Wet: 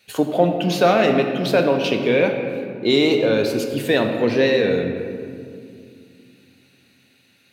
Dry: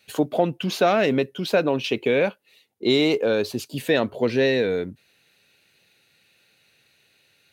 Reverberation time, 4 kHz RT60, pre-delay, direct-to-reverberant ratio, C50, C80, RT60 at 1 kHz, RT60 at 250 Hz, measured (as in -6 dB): 2.4 s, 1.3 s, 4 ms, 3.5 dB, 5.5 dB, 6.5 dB, 2.1 s, 3.8 s